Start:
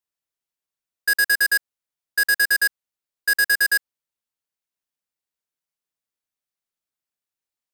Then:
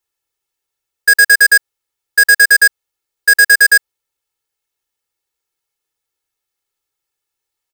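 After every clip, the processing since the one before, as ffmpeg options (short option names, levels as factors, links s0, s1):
-af "aecho=1:1:2.3:0.98,volume=2.24"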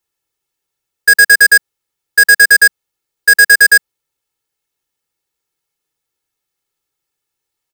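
-af "equalizer=f=190:w=1.1:g=8,volume=1.19"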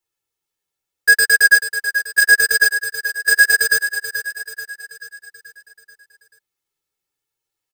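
-filter_complex "[0:a]flanger=delay=8.7:depth=3.5:regen=6:speed=0.81:shape=sinusoidal,asplit=2[s0][s1];[s1]aecho=0:1:434|868|1302|1736|2170|2604:0.316|0.164|0.0855|0.0445|0.0231|0.012[s2];[s0][s2]amix=inputs=2:normalize=0,volume=0.794"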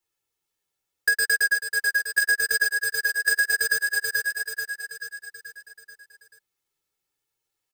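-af "acompressor=threshold=0.112:ratio=8"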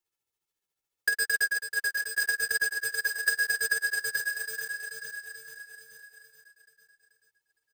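-af "tremolo=f=14:d=0.49,acrusher=bits=4:mode=log:mix=0:aa=0.000001,aecho=1:1:895|1790:0.335|0.0536,volume=0.708"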